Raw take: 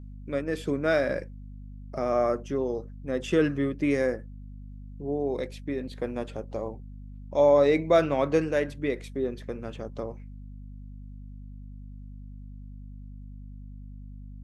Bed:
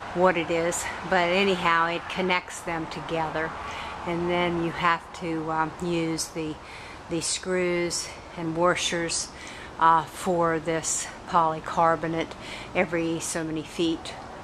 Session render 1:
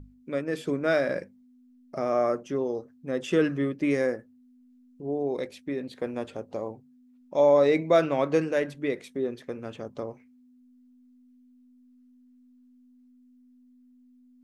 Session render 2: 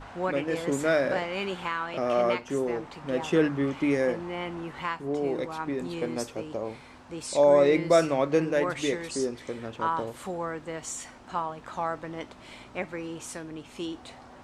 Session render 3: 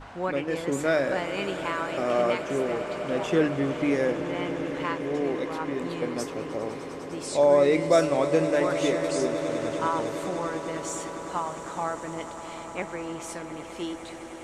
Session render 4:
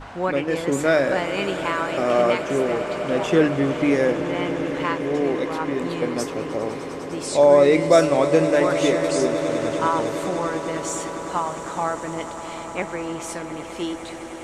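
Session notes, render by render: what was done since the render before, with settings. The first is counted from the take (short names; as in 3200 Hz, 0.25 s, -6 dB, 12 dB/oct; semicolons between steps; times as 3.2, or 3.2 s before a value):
notches 50/100/150/200 Hz
add bed -9.5 dB
swelling echo 0.101 s, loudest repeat 8, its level -17 dB
gain +5.5 dB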